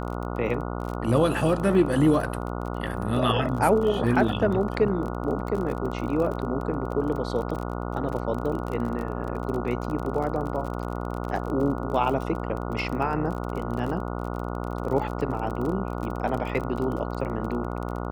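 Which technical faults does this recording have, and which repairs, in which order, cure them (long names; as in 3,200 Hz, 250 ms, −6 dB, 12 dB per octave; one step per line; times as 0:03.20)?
mains buzz 60 Hz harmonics 24 −31 dBFS
surface crackle 30 per second −31 dBFS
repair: click removal
hum removal 60 Hz, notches 24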